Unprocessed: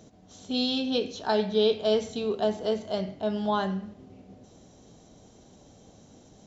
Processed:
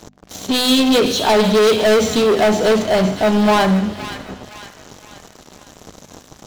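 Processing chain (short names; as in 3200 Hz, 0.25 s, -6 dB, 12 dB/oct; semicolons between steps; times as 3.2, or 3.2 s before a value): sample leveller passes 5; notches 50/100/150/200/250 Hz; thin delay 0.515 s, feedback 45%, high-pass 1400 Hz, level -9 dB; gain +2.5 dB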